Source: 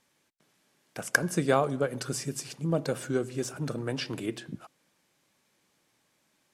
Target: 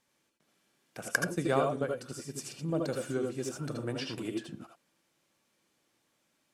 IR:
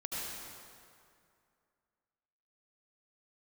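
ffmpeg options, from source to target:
-filter_complex "[0:a]asettb=1/sr,asplit=3[a][b][c];[a]atrim=end=1.274[d];[b]atrim=start=1.27:end=2.34,asetpts=PTS-STARTPTS,afade=t=in:d=0.004:c=qsin,afade=t=out:st=1.066:d=0.004:c=qsin,agate=range=-7dB:threshold=-30dB:ratio=16:detection=peak[e];[c]atrim=start=2.336[f];[d][e]acrossfade=d=0.004:c1=hsin:c2=qsin[g];[g][f]acrossfade=d=0.004:c1=qsin:c2=hsin[h];[1:a]atrim=start_sample=2205,atrim=end_sample=3969[i];[h][i]afir=irnorm=-1:irlink=0,volume=-1dB"

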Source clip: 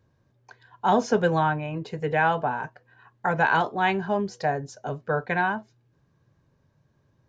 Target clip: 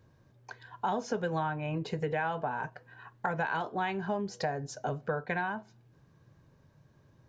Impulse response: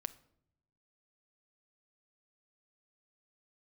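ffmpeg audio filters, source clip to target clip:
-filter_complex "[0:a]acompressor=threshold=-34dB:ratio=5,asplit=2[a][b];[1:a]atrim=start_sample=2205[c];[b][c]afir=irnorm=-1:irlink=0,volume=-4dB[d];[a][d]amix=inputs=2:normalize=0"

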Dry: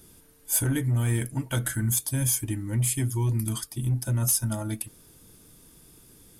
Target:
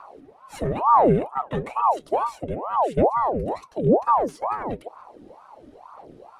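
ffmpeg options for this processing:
-filter_complex "[0:a]lowpass=2.6k,lowshelf=f=360:g=9,asplit=2[a][b];[b]acompressor=threshold=-35dB:ratio=6,volume=-2dB[c];[a][c]amix=inputs=2:normalize=0,aphaser=in_gain=1:out_gain=1:delay=4.2:decay=0.49:speed=1:type=sinusoidal,aeval=exprs='val(0)*sin(2*PI*670*n/s+670*0.6/2.2*sin(2*PI*2.2*n/s))':c=same,volume=-3dB"

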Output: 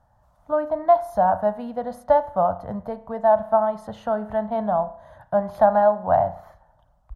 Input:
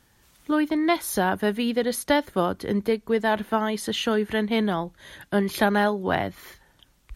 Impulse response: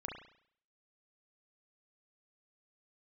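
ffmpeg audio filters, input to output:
-filter_complex "[0:a]firequalizer=gain_entry='entry(110,0);entry(380,-22);entry(620,9);entry(2300,-26);entry(4800,-22);entry(14000,-24)':delay=0.05:min_phase=1,asplit=2[a][b];[1:a]atrim=start_sample=2205[c];[b][c]afir=irnorm=-1:irlink=0,volume=-7.5dB[d];[a][d]amix=inputs=2:normalize=0"

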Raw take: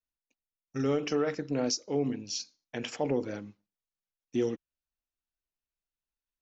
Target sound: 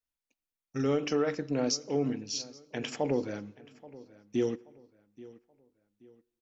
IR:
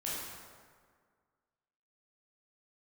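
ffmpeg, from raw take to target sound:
-filter_complex "[0:a]asplit=2[a][b];[b]adelay=829,lowpass=f=3.6k:p=1,volume=-19.5dB,asplit=2[c][d];[d]adelay=829,lowpass=f=3.6k:p=1,volume=0.36,asplit=2[e][f];[f]adelay=829,lowpass=f=3.6k:p=1,volume=0.36[g];[a][c][e][g]amix=inputs=4:normalize=0,asplit=2[h][i];[1:a]atrim=start_sample=2205,afade=t=out:st=0.42:d=0.01,atrim=end_sample=18963[j];[i][j]afir=irnorm=-1:irlink=0,volume=-25.5dB[k];[h][k]amix=inputs=2:normalize=0"

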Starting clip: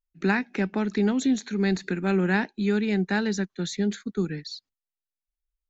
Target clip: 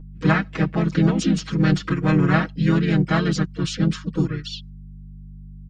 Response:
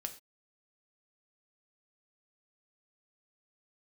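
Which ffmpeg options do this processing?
-filter_complex "[0:a]asplit=4[a][b][c][d];[b]asetrate=29433,aresample=44100,atempo=1.49831,volume=-7dB[e];[c]asetrate=35002,aresample=44100,atempo=1.25992,volume=0dB[f];[d]asetrate=55563,aresample=44100,atempo=0.793701,volume=-11dB[g];[a][e][f][g]amix=inputs=4:normalize=0,aeval=exprs='val(0)+0.0141*(sin(2*PI*50*n/s)+sin(2*PI*2*50*n/s)/2+sin(2*PI*3*50*n/s)/3+sin(2*PI*4*50*n/s)/4+sin(2*PI*5*50*n/s)/5)':c=same,aecho=1:1:6.3:0.9,volume=-1.5dB"

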